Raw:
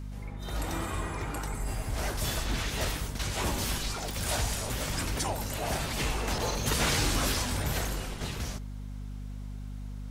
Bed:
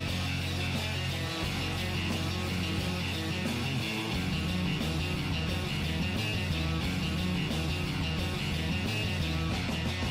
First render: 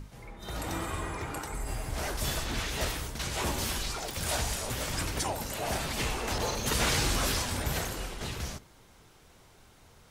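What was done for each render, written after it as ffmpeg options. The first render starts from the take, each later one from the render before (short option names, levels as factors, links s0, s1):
-af "bandreject=f=50:t=h:w=6,bandreject=f=100:t=h:w=6,bandreject=f=150:t=h:w=6,bandreject=f=200:t=h:w=6,bandreject=f=250:t=h:w=6,bandreject=f=300:t=h:w=6"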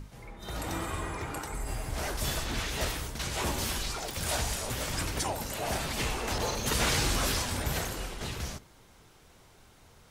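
-af anull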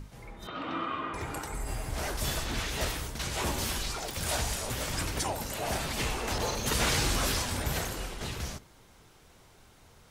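-filter_complex "[0:a]asettb=1/sr,asplit=3[s0][s1][s2];[s0]atrim=end=0.474[s3];[s1]atrim=start=0.47:end=1.14,asetpts=PTS-STARTPTS,afade=t=in:d=0.004:c=qsin,afade=t=out:st=0.666:d=0.004:c=qsin,highpass=220,equalizer=f=270:t=q:w=4:g=7,equalizer=f=400:t=q:w=4:g=-4,equalizer=f=840:t=q:w=4:g=-6,equalizer=f=1200:t=q:w=4:g=10,equalizer=f=1800:t=q:w=4:g=-4,equalizer=f=3000:t=q:w=4:g=5,lowpass=f=3400:w=0.5412,lowpass=f=3400:w=1.3066[s4];[s2]atrim=start=1.136[s5];[s3][s4]acrossfade=d=0.004:c1=hsin:c2=qsin[s6];[s6][s5]acrossfade=d=0.004:c1=qsin:c2=hsin"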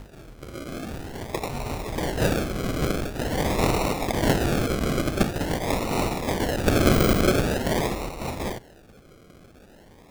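-af "aexciter=amount=4.3:drive=6.2:freq=3700,acrusher=samples=38:mix=1:aa=0.000001:lfo=1:lforange=22.8:lforate=0.46"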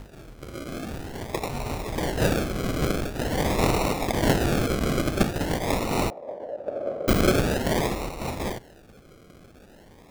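-filter_complex "[0:a]asettb=1/sr,asplit=3[s0][s1][s2];[s0]atrim=end=6.104[s3];[s1]atrim=start=6.1:end=7.08,asetpts=PTS-STARTPTS,afade=t=in:d=0.004:c=qsin,afade=t=out:st=0.976:d=0.004:c=qsin,bandpass=f=580:t=q:w=6.1[s4];[s2]atrim=start=7.076[s5];[s3][s4]acrossfade=d=0.004:c1=hsin:c2=qsin[s6];[s6][s5]acrossfade=d=0.004:c1=qsin:c2=hsin"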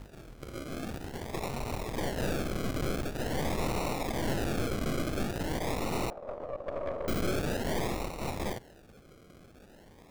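-af "aeval=exprs='(tanh(28.2*val(0)+0.75)-tanh(0.75))/28.2':c=same"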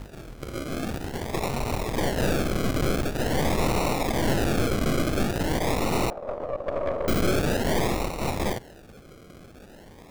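-af "volume=2.37"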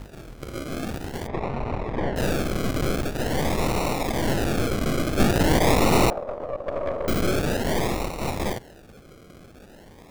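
-filter_complex "[0:a]asplit=3[s0][s1][s2];[s0]afade=t=out:st=1.26:d=0.02[s3];[s1]lowpass=2000,afade=t=in:st=1.26:d=0.02,afade=t=out:st=2.15:d=0.02[s4];[s2]afade=t=in:st=2.15:d=0.02[s5];[s3][s4][s5]amix=inputs=3:normalize=0,asplit=3[s6][s7][s8];[s6]afade=t=out:st=5.18:d=0.02[s9];[s7]acontrast=69,afade=t=in:st=5.18:d=0.02,afade=t=out:st=6.22:d=0.02[s10];[s8]afade=t=in:st=6.22:d=0.02[s11];[s9][s10][s11]amix=inputs=3:normalize=0"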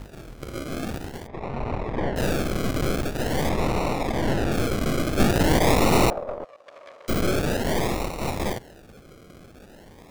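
-filter_complex "[0:a]asettb=1/sr,asplit=3[s0][s1][s2];[s0]atrim=end=3.494[s3];[s1]atrim=start=3.49:end=4.52,asetpts=PTS-STARTPTS,afade=t=in:d=0.004:c=qsin,afade=t=out:st=1.026:d=0.004:c=qsin,aemphasis=mode=reproduction:type=cd[s4];[s2]atrim=start=4.516[s5];[s3][s4]acrossfade=d=0.004:c1=hsin:c2=qsin[s6];[s6][s5]acrossfade=d=0.004:c1=qsin:c2=hsin,asplit=3[s7][s8][s9];[s7]afade=t=out:st=6.43:d=0.02[s10];[s8]bandpass=f=6500:t=q:w=0.72,afade=t=in:st=6.43:d=0.02,afade=t=out:st=7.08:d=0.02[s11];[s9]afade=t=in:st=7.08:d=0.02[s12];[s10][s11][s12]amix=inputs=3:normalize=0,asplit=3[s13][s14][s15];[s13]atrim=end=1.29,asetpts=PTS-STARTPTS,afade=t=out:st=0.97:d=0.32:silence=0.354813[s16];[s14]atrim=start=1.29:end=1.31,asetpts=PTS-STARTPTS,volume=0.355[s17];[s15]atrim=start=1.31,asetpts=PTS-STARTPTS,afade=t=in:d=0.32:silence=0.354813[s18];[s16][s17][s18]concat=n=3:v=0:a=1"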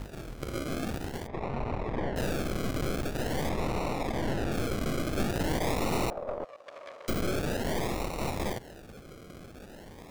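-af "acompressor=threshold=0.0355:ratio=3"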